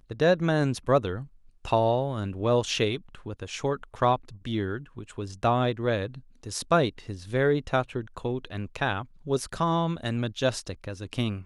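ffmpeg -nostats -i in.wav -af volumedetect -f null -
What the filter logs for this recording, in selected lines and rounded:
mean_volume: -27.6 dB
max_volume: -9.4 dB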